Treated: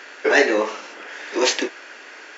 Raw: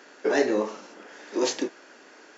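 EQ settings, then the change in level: HPF 330 Hz 12 dB/oct; bell 2300 Hz +9.5 dB 1.6 oct; +5.5 dB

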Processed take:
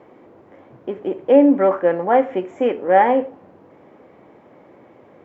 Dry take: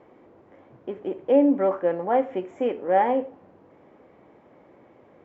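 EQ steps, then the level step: HPF 74 Hz; dynamic EQ 1700 Hz, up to +4 dB, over -38 dBFS, Q 1.3; +6.0 dB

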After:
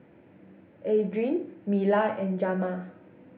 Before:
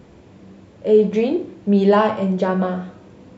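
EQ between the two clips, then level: air absorption 100 m; speaker cabinet 180–2500 Hz, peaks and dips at 210 Hz -5 dB, 420 Hz -7 dB, 730 Hz -4 dB, 1100 Hz -10 dB; -3.5 dB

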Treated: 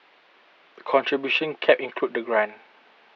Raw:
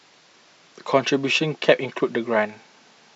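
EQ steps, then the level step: HPF 370 Hz 12 dB/oct; LPF 3200 Hz 24 dB/oct; 0.0 dB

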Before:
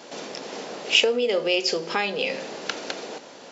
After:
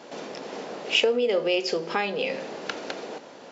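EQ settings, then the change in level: high shelf 3200 Hz -9 dB; 0.0 dB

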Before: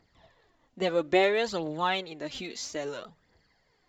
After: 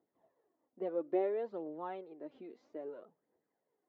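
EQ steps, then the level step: ladder band-pass 440 Hz, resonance 25%; +1.5 dB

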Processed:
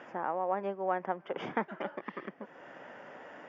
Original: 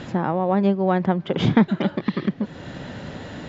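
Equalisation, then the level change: running mean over 11 samples; HPF 590 Hz 12 dB/oct; -6.0 dB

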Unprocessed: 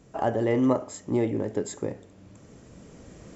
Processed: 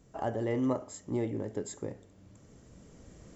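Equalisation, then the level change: low shelf 84 Hz +8 dB; high shelf 6800 Hz +6 dB; notch 2500 Hz, Q 22; -8.0 dB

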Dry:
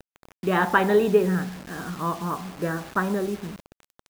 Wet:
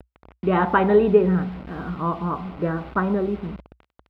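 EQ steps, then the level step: air absorption 420 m; bell 60 Hz +10.5 dB 0.53 oct; notch 1700 Hz, Q 6.7; +4.0 dB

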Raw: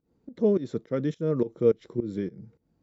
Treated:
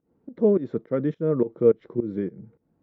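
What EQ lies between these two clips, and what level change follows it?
LPF 1700 Hz 12 dB/oct; low shelf 84 Hz -11 dB; +4.0 dB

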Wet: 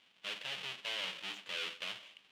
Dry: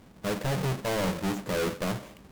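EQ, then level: band-pass 3000 Hz, Q 3.6; +4.5 dB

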